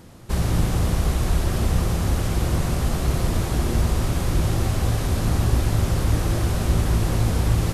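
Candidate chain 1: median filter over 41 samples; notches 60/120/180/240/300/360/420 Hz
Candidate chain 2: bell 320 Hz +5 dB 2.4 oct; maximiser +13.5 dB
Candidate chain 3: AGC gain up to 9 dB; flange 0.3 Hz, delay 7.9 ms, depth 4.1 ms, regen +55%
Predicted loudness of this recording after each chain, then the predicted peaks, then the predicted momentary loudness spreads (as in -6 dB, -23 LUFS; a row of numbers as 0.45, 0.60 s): -24.5, -11.0, -20.5 LUFS; -9.5, -1.0, -6.0 dBFS; 2, 1, 2 LU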